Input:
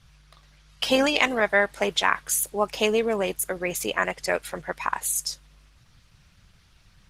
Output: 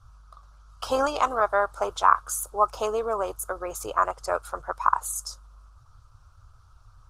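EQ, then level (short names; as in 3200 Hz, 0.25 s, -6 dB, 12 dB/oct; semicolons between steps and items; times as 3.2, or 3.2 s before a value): EQ curve 110 Hz 0 dB, 180 Hz -26 dB, 270 Hz -15 dB, 860 Hz -3 dB, 1300 Hz +5 dB, 1900 Hz -26 dB, 5900 Hz -11 dB, 8700 Hz -10 dB, 12000 Hz -13 dB; +5.5 dB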